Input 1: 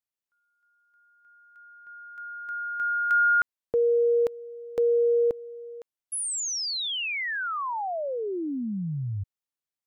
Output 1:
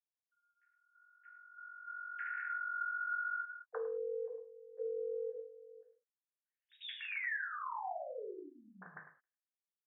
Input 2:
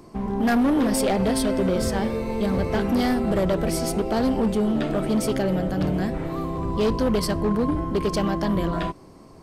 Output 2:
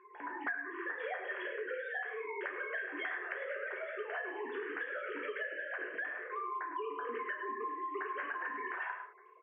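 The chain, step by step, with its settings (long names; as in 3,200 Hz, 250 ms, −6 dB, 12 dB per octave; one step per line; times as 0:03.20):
three sine waves on the formant tracks
resonant band-pass 1,700 Hz, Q 5.8
single-tap delay 103 ms −10.5 dB
reverb whose tail is shaped and stops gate 140 ms falling, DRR −1 dB
downward compressor 8 to 1, threshold −41 dBFS
level +5 dB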